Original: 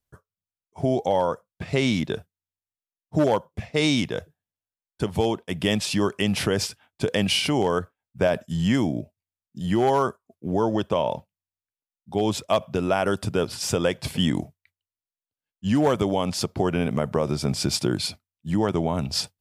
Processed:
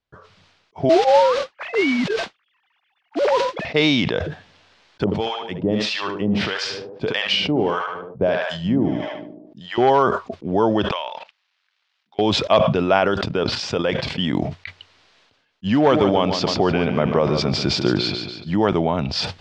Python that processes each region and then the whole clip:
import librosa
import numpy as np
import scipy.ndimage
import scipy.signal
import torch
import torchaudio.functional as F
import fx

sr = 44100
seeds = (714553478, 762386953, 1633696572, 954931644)

y = fx.chain(x, sr, fx.sine_speech(),
    fx.mod_noise(seeds[0], snr_db=11), at=(0.89, 3.65))
y = fx.chain(y, sr, fx.echo_tape(ms=73, feedback_pct=47, wet_db=-5.5, lp_hz=5200.0, drive_db=11.0, wow_cents=18),
    fx.harmonic_tremolo(hz=1.6, depth_pct=100, crossover_hz=740.0), at=(5.04, 9.78))
y = fx.chain(y, sr, fx.median_filter(points=5),
    fx.highpass(hz=1400.0, slope=12),
    fx.level_steps(step_db=19), at=(10.91, 12.19))
y = fx.chain(y, sr, fx.lowpass(hz=9500.0, slope=24),
    fx.level_steps(step_db=12), at=(13.08, 14.33))
y = fx.chain(y, sr, fx.lowpass(hz=8400.0, slope=24),
    fx.echo_feedback(ms=142, feedback_pct=37, wet_db=-9.5), at=(15.77, 18.54))
y = scipy.signal.sosfilt(scipy.signal.butter(4, 4500.0, 'lowpass', fs=sr, output='sos'), y)
y = fx.low_shelf(y, sr, hz=180.0, db=-8.5)
y = fx.sustainer(y, sr, db_per_s=43.0)
y = y * librosa.db_to_amplitude(6.0)